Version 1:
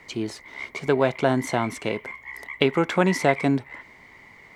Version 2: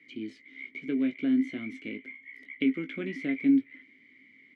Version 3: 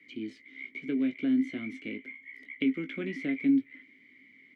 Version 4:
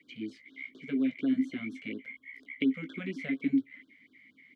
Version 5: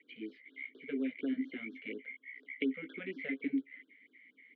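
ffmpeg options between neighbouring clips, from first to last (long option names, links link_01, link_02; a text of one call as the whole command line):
ffmpeg -i in.wav -filter_complex "[0:a]asplit=3[link_01][link_02][link_03];[link_01]bandpass=frequency=270:width_type=q:width=8,volume=0dB[link_04];[link_02]bandpass=frequency=2290:width_type=q:width=8,volume=-6dB[link_05];[link_03]bandpass=frequency=3010:width_type=q:width=8,volume=-9dB[link_06];[link_04][link_05][link_06]amix=inputs=3:normalize=0,acrossover=split=2900[link_07][link_08];[link_08]acompressor=threshold=-56dB:ratio=4:attack=1:release=60[link_09];[link_07][link_09]amix=inputs=2:normalize=0,asplit=2[link_10][link_11];[link_11]adelay=19,volume=-8dB[link_12];[link_10][link_12]amix=inputs=2:normalize=0,volume=1.5dB" out.wav
ffmpeg -i in.wav -filter_complex "[0:a]acrossover=split=280|3000[link_01][link_02][link_03];[link_02]acompressor=threshold=-33dB:ratio=2[link_04];[link_01][link_04][link_03]amix=inputs=3:normalize=0" out.wav
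ffmpeg -i in.wav -af "afftfilt=real='re*(1-between(b*sr/1024,300*pow(2400/300,0.5+0.5*sin(2*PI*4.2*pts/sr))/1.41,300*pow(2400/300,0.5+0.5*sin(2*PI*4.2*pts/sr))*1.41))':imag='im*(1-between(b*sr/1024,300*pow(2400/300,0.5+0.5*sin(2*PI*4.2*pts/sr))/1.41,300*pow(2400/300,0.5+0.5*sin(2*PI*4.2*pts/sr))*1.41))':win_size=1024:overlap=0.75" out.wav
ffmpeg -i in.wav -af "highpass=310,equalizer=frequency=450:width_type=q:width=4:gain=8,equalizer=frequency=690:width_type=q:width=4:gain=-4,equalizer=frequency=1100:width_type=q:width=4:gain=-8,equalizer=frequency=1900:width_type=q:width=4:gain=3,lowpass=frequency=3300:width=0.5412,lowpass=frequency=3300:width=1.3066,volume=-3dB" out.wav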